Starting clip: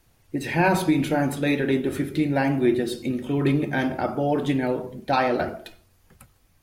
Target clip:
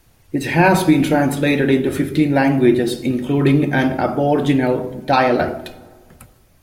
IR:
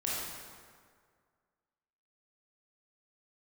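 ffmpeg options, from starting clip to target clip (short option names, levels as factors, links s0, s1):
-filter_complex "[0:a]asplit=2[s0][s1];[1:a]atrim=start_sample=2205,lowshelf=f=430:g=11.5,highshelf=f=9300:g=11.5[s2];[s1][s2]afir=irnorm=-1:irlink=0,volume=0.0501[s3];[s0][s3]amix=inputs=2:normalize=0,volume=2.11"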